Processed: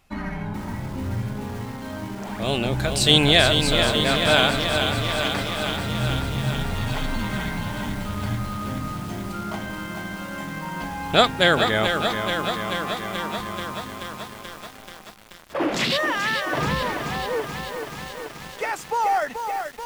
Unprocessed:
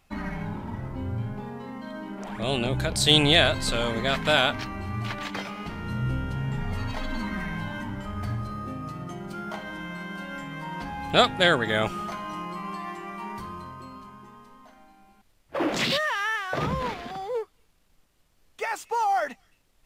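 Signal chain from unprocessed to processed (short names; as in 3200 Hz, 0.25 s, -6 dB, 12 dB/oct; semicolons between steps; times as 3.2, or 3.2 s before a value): lo-fi delay 0.432 s, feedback 80%, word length 7-bit, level -6 dB; gain +2.5 dB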